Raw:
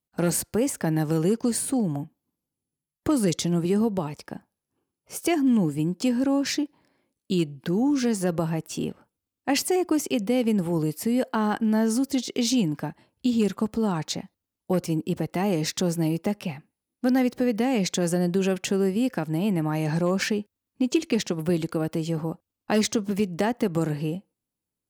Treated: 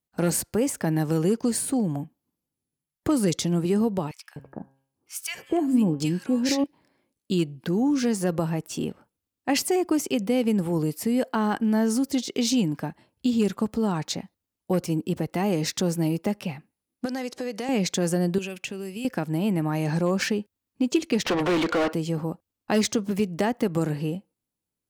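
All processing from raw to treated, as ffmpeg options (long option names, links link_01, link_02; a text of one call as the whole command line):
ffmpeg -i in.wav -filter_complex "[0:a]asettb=1/sr,asplit=3[link_01][link_02][link_03];[link_01]atrim=end=4.114[link_04];[link_02]atrim=start=4.11:end=6.64,asetpts=PTS-STARTPTS,afade=type=in:duration=0.004:curve=qsin,afade=type=out:start_time=2.526:duration=0.004:curve=qsin,bandreject=frequency=135.1:width_type=h:width=4,bandreject=frequency=270.2:width_type=h:width=4,bandreject=frequency=405.3:width_type=h:width=4,bandreject=frequency=540.4:width_type=h:width=4,bandreject=frequency=675.5:width_type=h:width=4,bandreject=frequency=810.6:width_type=h:width=4,bandreject=frequency=945.7:width_type=h:width=4,bandreject=frequency=1080.8:width_type=h:width=4,bandreject=frequency=1215.9:width_type=h:width=4,bandreject=frequency=1351:width_type=h:width=4,bandreject=frequency=1486.1:width_type=h:width=4,bandreject=frequency=1621.2:width_type=h:width=4,bandreject=frequency=1756.3:width_type=h:width=4,bandreject=frequency=1891.4:width_type=h:width=4,bandreject=frequency=2026.5:width_type=h:width=4,bandreject=frequency=2161.6:width_type=h:width=4,bandreject=frequency=2296.7:width_type=h:width=4,bandreject=frequency=2431.8:width_type=h:width=4,bandreject=frequency=2566.9:width_type=h:width=4,bandreject=frequency=2702:width_type=h:width=4,bandreject=frequency=2837.1:width_type=h:width=4,bandreject=frequency=2972.2:width_type=h:width=4,bandreject=frequency=3107.3:width_type=h:width=4,bandreject=frequency=3242.4:width_type=h:width=4,bandreject=frequency=3377.5:width_type=h:width=4,acrossover=split=1300[link_05][link_06];[link_05]adelay=250[link_07];[link_07][link_06]amix=inputs=2:normalize=0,atrim=end_sample=111573[link_08];[link_03]atrim=start=6.636[link_09];[link_04][link_08]acrossfade=duration=0.004:curve1=hsin:curve2=qsin[link_10];[link_10][link_09]acrossfade=duration=0.004:curve1=qsin:curve2=hsin,asettb=1/sr,asplit=3[link_11][link_12][link_13];[link_11]atrim=end=17.054[link_14];[link_12]atrim=start=17.05:end=17.69,asetpts=PTS-STARTPTS,afade=type=in:duration=0.004:curve=qsin,afade=type=out:start_time=0.636:duration=0.004:curve=qsin,bass=frequency=250:gain=-14,treble=frequency=4000:gain=10,acompressor=threshold=-26dB:ratio=5:attack=3.2:release=140:knee=1:detection=peak,lowpass=7600[link_15];[link_13]atrim=start=17.686[link_16];[link_14][link_15]acrossfade=duration=0.004:curve1=hsin:curve2=qsin[link_17];[link_17][link_16]acrossfade=duration=0.004:curve1=qsin:curve2=hsin,asettb=1/sr,asplit=3[link_18][link_19][link_20];[link_18]atrim=end=18.384[link_21];[link_19]atrim=start=18.38:end=19.05,asetpts=PTS-STARTPTS,afade=type=in:duration=0.004:curve=qsin,afade=type=out:start_time=0.666:duration=0.004:curve=qsin,equalizer=frequency=2600:width=2.7:gain=11,acrossover=split=110|4100[link_22][link_23][link_24];[link_22]acompressor=threshold=-60dB:ratio=4[link_25];[link_23]acompressor=threshold=-34dB:ratio=4[link_26];[link_24]acompressor=threshold=-41dB:ratio=4[link_27];[link_25][link_26][link_27]amix=inputs=3:normalize=0[link_28];[link_20]atrim=start=19.046[link_29];[link_21][link_28]acrossfade=duration=0.004:curve1=hsin:curve2=qsin[link_30];[link_30][link_29]acrossfade=duration=0.004:curve1=qsin:curve2=hsin,asettb=1/sr,asplit=3[link_31][link_32][link_33];[link_31]atrim=end=21.254[link_34];[link_32]atrim=start=21.25:end=21.93,asetpts=PTS-STARTPTS,afade=type=in:duration=0.004:curve=qsin,afade=type=out:start_time=0.676:duration=0.004:curve=qsin,highpass=280,lowpass=3800,asplit=2[link_35][link_36];[link_36]highpass=frequency=720:poles=1,volume=35dB,asoftclip=type=tanh:threshold=-16dB[link_37];[link_35][link_37]amix=inputs=2:normalize=0,lowpass=frequency=2700:poles=1,volume=-6dB[link_38];[link_33]atrim=start=21.926[link_39];[link_34][link_38]acrossfade=duration=0.004:curve1=hsin:curve2=qsin[link_40];[link_40][link_39]acrossfade=duration=0.004:curve1=qsin:curve2=hsin" out.wav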